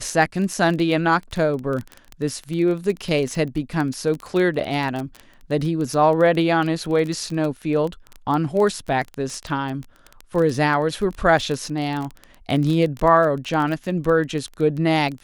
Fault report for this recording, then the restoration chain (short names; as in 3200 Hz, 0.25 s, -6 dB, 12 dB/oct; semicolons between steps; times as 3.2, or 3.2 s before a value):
crackle 21/s -24 dBFS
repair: de-click